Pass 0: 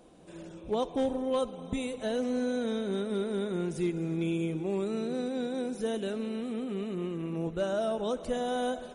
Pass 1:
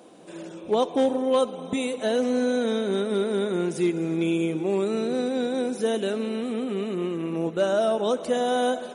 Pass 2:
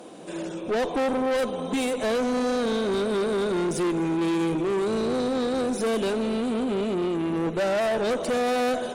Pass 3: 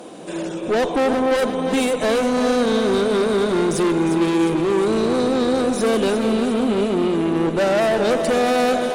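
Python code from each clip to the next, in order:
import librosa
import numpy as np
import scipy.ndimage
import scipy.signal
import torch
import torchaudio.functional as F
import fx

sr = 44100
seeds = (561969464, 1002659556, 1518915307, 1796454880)

y1 = scipy.signal.sosfilt(scipy.signal.butter(2, 220.0, 'highpass', fs=sr, output='sos'), x)
y1 = F.gain(torch.from_numpy(y1), 8.0).numpy()
y2 = fx.tube_stage(y1, sr, drive_db=29.0, bias=0.25)
y2 = F.gain(torch.from_numpy(y2), 7.0).numpy()
y3 = fx.echo_feedback(y2, sr, ms=354, feedback_pct=55, wet_db=-9.0)
y3 = F.gain(torch.from_numpy(y3), 6.0).numpy()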